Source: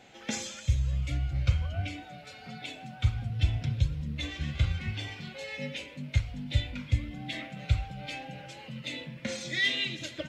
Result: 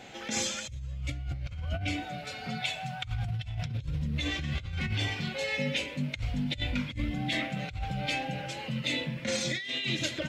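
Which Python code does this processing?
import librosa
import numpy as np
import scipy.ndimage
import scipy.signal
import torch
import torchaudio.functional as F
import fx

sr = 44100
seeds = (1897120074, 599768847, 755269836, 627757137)

y = fx.curve_eq(x, sr, hz=(170.0, 290.0, 690.0), db=(0, -22, 1), at=(2.61, 3.66))
y = fx.over_compress(y, sr, threshold_db=-36.0, ratio=-1.0)
y = y * 10.0 ** (3.0 / 20.0)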